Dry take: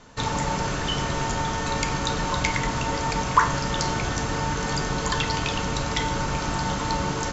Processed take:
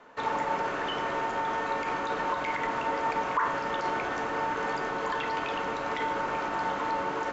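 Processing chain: peak limiter -16.5 dBFS, peak gain reduction 11.5 dB; three-band isolator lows -23 dB, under 290 Hz, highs -20 dB, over 2.6 kHz

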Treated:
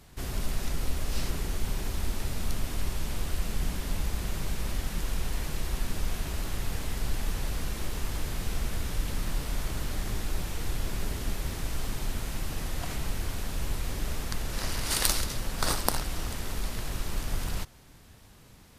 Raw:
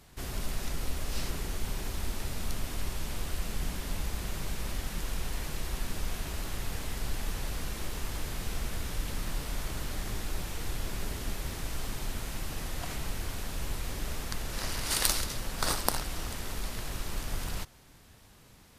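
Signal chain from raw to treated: bass shelf 330 Hz +3 dB; trim +1 dB

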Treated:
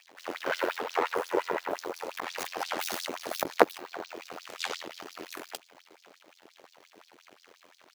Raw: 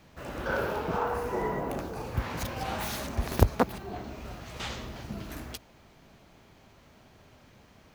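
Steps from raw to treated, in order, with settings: half-wave rectifier; AM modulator 86 Hz, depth 100%; LFO high-pass sine 5.7 Hz 320–5100 Hz; trim +8.5 dB

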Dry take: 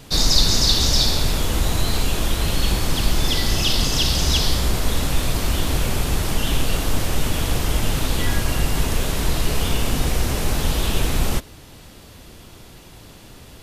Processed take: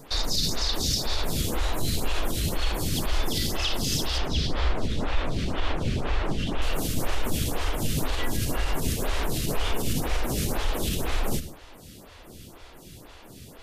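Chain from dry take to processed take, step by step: 4.18–6.62 s: low-pass 3.6 kHz 12 dB/octave; peak limiter -13 dBFS, peak gain reduction 10 dB; reverberation RT60 0.55 s, pre-delay 73 ms, DRR 12.5 dB; lamp-driven phase shifter 2 Hz

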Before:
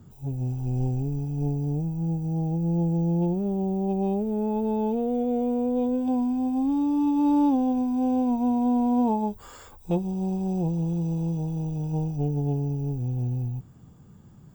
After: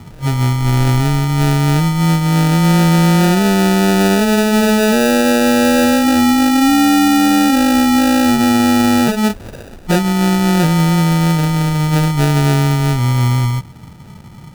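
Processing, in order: sample-and-hold 41×; loudness maximiser +19.5 dB; trim -5.5 dB

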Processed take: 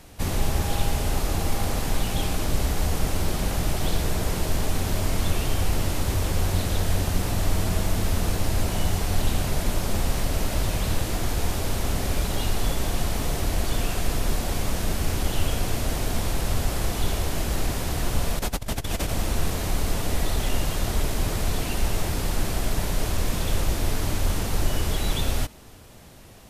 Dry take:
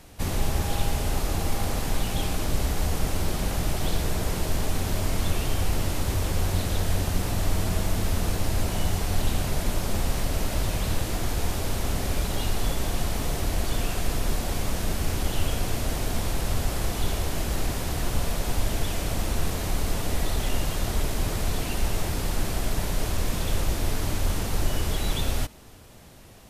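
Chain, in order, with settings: 18.39–19.10 s: compressor with a negative ratio -28 dBFS, ratio -0.5; trim +1.5 dB

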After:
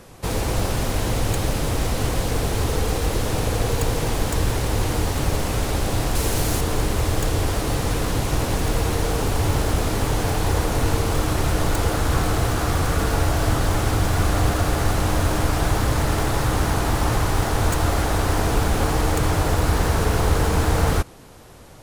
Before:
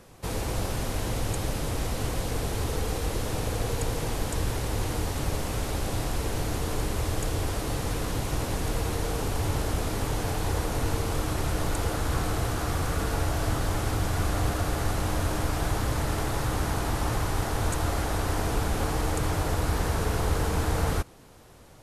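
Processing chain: tracing distortion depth 0.048 ms; 6.15–6.61 s: treble shelf 5 kHz +8 dB; trim +7 dB

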